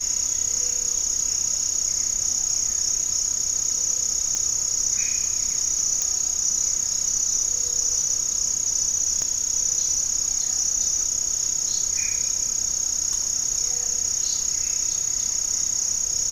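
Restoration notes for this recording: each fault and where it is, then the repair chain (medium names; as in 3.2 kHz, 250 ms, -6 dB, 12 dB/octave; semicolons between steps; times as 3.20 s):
4.35 s: pop -13 dBFS
6.02 s: pop -10 dBFS
9.22 s: pop -16 dBFS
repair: de-click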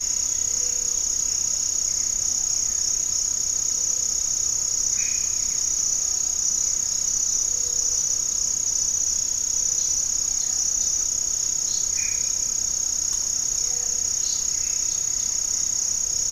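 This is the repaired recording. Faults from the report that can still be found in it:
9.22 s: pop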